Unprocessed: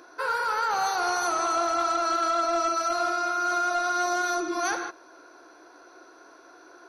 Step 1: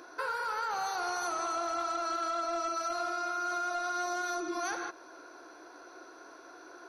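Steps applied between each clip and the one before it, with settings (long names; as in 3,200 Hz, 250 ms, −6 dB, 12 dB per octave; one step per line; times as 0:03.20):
downward compressor 3 to 1, threshold −34 dBFS, peak gain reduction 9 dB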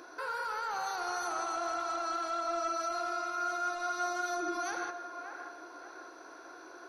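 brickwall limiter −29.5 dBFS, peak gain reduction 5 dB
delay with a band-pass on its return 580 ms, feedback 37%, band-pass 1,100 Hz, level −7 dB
on a send at −14 dB: convolution reverb, pre-delay 3 ms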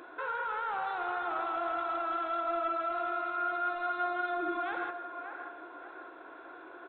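downsampling to 8,000 Hz
level +1.5 dB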